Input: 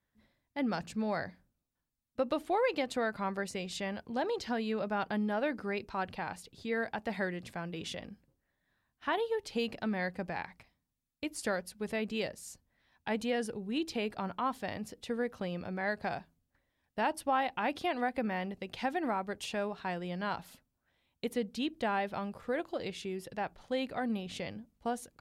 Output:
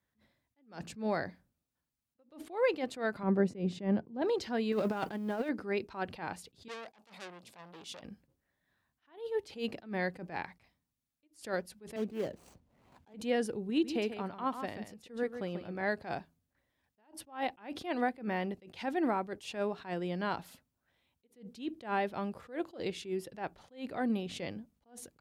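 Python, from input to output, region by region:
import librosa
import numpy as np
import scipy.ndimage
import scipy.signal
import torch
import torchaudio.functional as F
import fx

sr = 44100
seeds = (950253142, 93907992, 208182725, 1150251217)

y = fx.chain(x, sr, fx.highpass(hz=130.0, slope=24),
    fx.tilt_eq(slope=-4.5), at=(3.23, 4.22))
y = fx.chain(y, sr, fx.law_mismatch(coded='mu'),
    fx.high_shelf(hz=8300.0, db=5.0),
    fx.over_compress(threshold_db=-34.0, ratio=-0.5), at=(4.72, 5.49))
y = fx.chain(y, sr, fx.highpass(hz=480.0, slope=6),
    fx.peak_eq(hz=1800.0, db=-11.5, octaves=0.72),
    fx.transformer_sat(knee_hz=3800.0), at=(6.68, 8.03))
y = fx.chain(y, sr, fx.median_filter(points=25),
    fx.band_squash(depth_pct=70), at=(11.96, 13.14))
y = fx.chain(y, sr, fx.echo_single(ms=139, db=-7.0),
    fx.upward_expand(threshold_db=-44.0, expansion=1.5), at=(13.7, 15.83))
y = scipy.signal.sosfilt(scipy.signal.butter(2, 52.0, 'highpass', fs=sr, output='sos'), y)
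y = fx.dynamic_eq(y, sr, hz=340.0, q=1.5, threshold_db=-49.0, ratio=4.0, max_db=6)
y = fx.attack_slew(y, sr, db_per_s=180.0)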